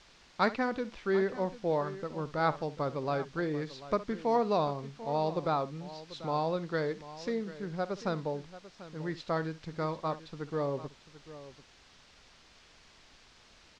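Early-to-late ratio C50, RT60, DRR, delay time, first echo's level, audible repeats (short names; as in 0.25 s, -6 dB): none, none, none, 63 ms, -16.5 dB, 2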